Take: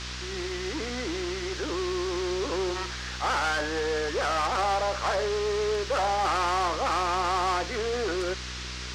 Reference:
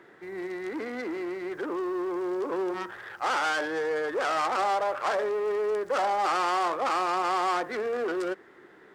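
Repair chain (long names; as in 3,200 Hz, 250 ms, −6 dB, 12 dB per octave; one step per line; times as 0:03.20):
hum removal 62.1 Hz, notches 13
noise reduction from a noise print 9 dB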